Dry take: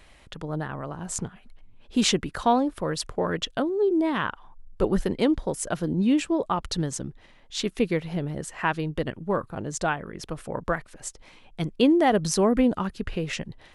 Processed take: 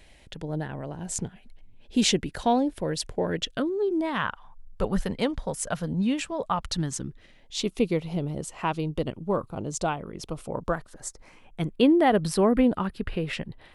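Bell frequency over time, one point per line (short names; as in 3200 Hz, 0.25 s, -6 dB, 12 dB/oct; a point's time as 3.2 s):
bell -13 dB 0.5 oct
3.36 s 1200 Hz
4.14 s 340 Hz
6.61 s 340 Hz
7.65 s 1700 Hz
10.58 s 1700 Hz
11.88 s 6400 Hz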